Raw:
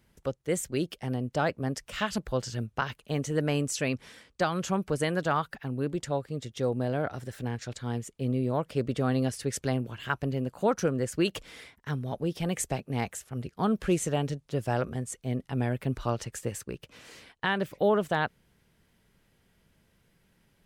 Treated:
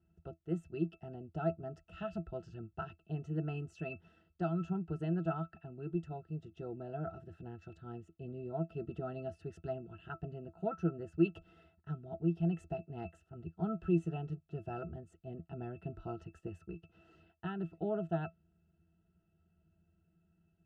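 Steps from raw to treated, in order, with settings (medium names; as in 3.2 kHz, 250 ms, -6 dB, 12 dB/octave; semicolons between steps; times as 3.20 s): band-stop 2.2 kHz, Q 13; pitch-class resonator E, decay 0.11 s; trim +1 dB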